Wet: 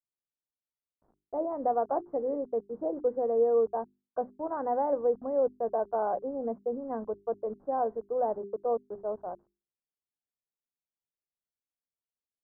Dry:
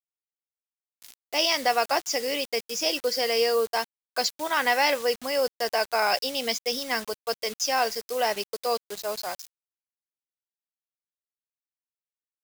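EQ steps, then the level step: Gaussian low-pass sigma 11 samples; hum notches 50/100/150/200/250/300/350/400 Hz; +2.0 dB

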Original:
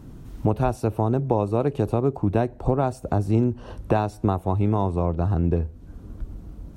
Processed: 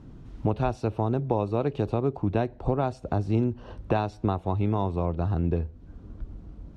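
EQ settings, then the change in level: low-pass 4.9 kHz 12 dB/octave; dynamic bell 3.7 kHz, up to +6 dB, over -48 dBFS, Q 0.85; -4.0 dB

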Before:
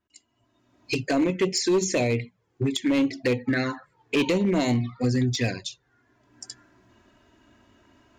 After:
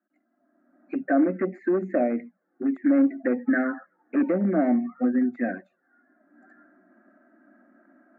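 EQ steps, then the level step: elliptic band-pass 200–1600 Hz, stop band 50 dB; static phaser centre 650 Hz, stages 8; +4.0 dB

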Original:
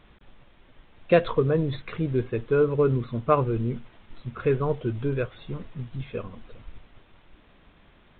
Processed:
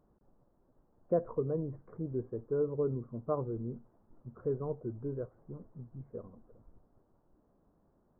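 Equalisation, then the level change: Gaussian low-pass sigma 9.4 samples; bass shelf 110 Hz -10.5 dB; -8.0 dB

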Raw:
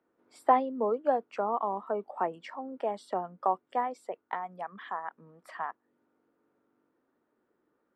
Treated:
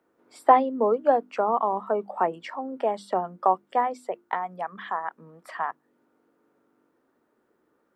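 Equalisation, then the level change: hum notches 50/100/150/200/250/300/350 Hz; +6.5 dB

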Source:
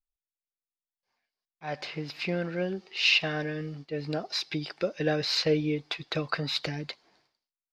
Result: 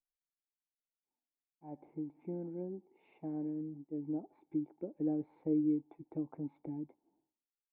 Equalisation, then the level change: cascade formant filter u; 0.0 dB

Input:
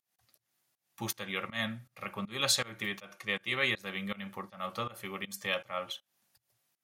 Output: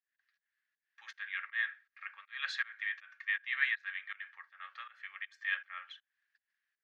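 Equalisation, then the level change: ladder high-pass 1.6 kHz, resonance 80%; Bessel low-pass 6.6 kHz; distance through air 190 m; +4.5 dB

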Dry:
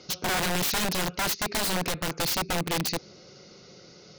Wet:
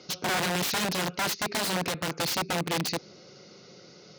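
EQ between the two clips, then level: high-pass 110 Hz 12 dB/octave; treble shelf 9.4 kHz -6.5 dB; 0.0 dB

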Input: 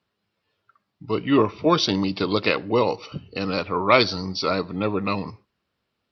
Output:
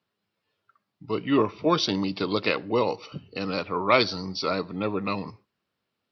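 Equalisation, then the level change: high-pass 99 Hz; -3.5 dB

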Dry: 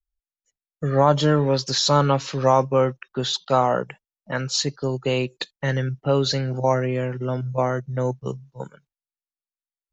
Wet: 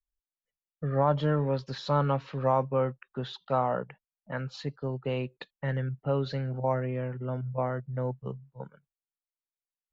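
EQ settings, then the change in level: dynamic bell 6.7 kHz, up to +6 dB, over -40 dBFS, Q 0.96; distance through air 490 m; peaking EQ 340 Hz -5.5 dB 0.48 oct; -6.0 dB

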